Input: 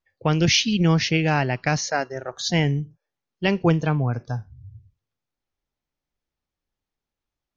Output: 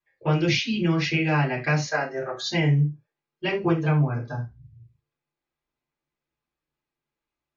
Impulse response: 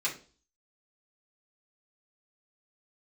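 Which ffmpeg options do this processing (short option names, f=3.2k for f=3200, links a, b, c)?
-filter_complex "[0:a]acompressor=threshold=-22dB:ratio=2.5,lowpass=f=2.3k:p=1[a];[1:a]atrim=start_sample=2205,afade=t=out:st=0.15:d=0.01,atrim=end_sample=7056[b];[a][b]afir=irnorm=-1:irlink=0,volume=-2dB"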